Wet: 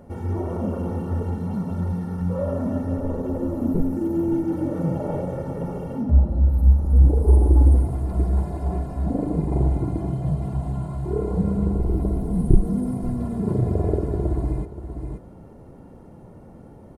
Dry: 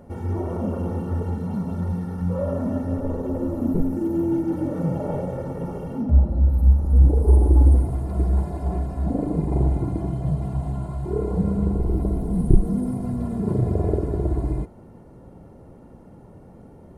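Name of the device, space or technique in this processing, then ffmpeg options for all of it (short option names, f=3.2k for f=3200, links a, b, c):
ducked delay: -filter_complex "[0:a]asplit=3[a][b][c];[b]adelay=526,volume=-5dB[d];[c]apad=whole_len=771623[e];[d][e]sidechaincompress=threshold=-31dB:ratio=8:attack=6.3:release=615[f];[a][f]amix=inputs=2:normalize=0"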